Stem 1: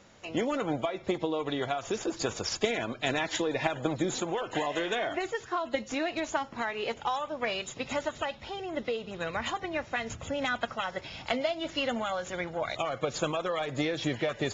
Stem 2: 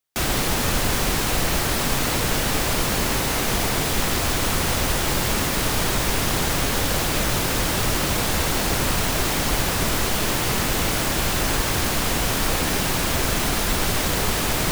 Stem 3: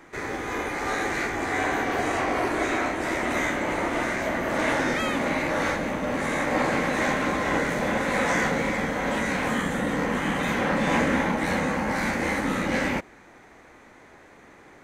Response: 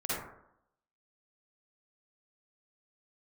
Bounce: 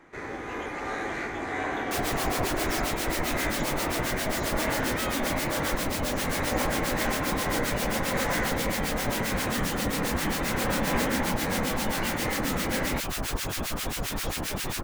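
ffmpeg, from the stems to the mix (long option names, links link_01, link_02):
-filter_complex "[0:a]highpass=1000,adelay=250,volume=-9.5dB[link_01];[1:a]acrossover=split=1300[link_02][link_03];[link_02]aeval=exprs='val(0)*(1-1/2+1/2*cos(2*PI*7.5*n/s))':channel_layout=same[link_04];[link_03]aeval=exprs='val(0)*(1-1/2-1/2*cos(2*PI*7.5*n/s))':channel_layout=same[link_05];[link_04][link_05]amix=inputs=2:normalize=0,adelay=1750,volume=-5dB[link_06];[2:a]highshelf=frequency=4400:gain=-8,volume=-4.5dB[link_07];[link_01][link_06][link_07]amix=inputs=3:normalize=0"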